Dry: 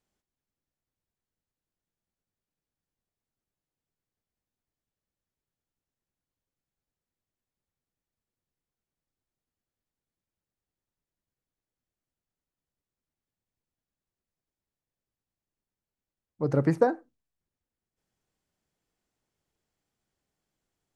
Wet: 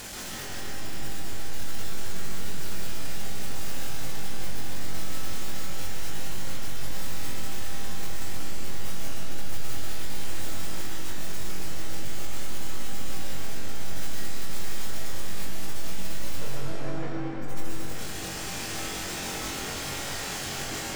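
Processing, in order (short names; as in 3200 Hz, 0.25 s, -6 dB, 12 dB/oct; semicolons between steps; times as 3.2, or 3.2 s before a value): infinite clipping; tilt shelf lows -3.5 dB; spectral gate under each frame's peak -15 dB strong; on a send: flutter echo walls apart 3.7 m, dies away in 0.23 s; on the sum: digital reverb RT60 4.9 s, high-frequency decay 0.75×, pre-delay 85 ms, DRR -6.5 dB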